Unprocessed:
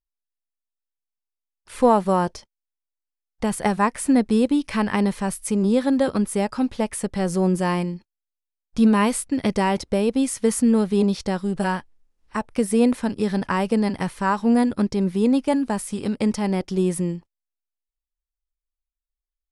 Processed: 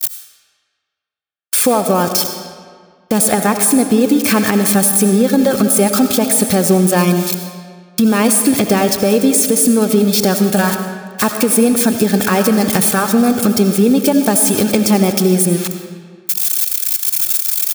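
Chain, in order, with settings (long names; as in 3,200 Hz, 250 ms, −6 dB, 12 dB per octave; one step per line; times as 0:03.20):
spike at every zero crossing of −19.5 dBFS
noise gate −33 dBFS, range −51 dB
reverb reduction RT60 0.51 s
high-pass filter 80 Hz 12 dB per octave
downward compressor 10 to 1, threshold −26 dBFS, peak gain reduction 14.5 dB
notch comb filter 970 Hz
tempo change 1.1×
comb and all-pass reverb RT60 1.8 s, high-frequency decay 0.75×, pre-delay 40 ms, DRR 7 dB
boost into a limiter +19.5 dB
level −1.5 dB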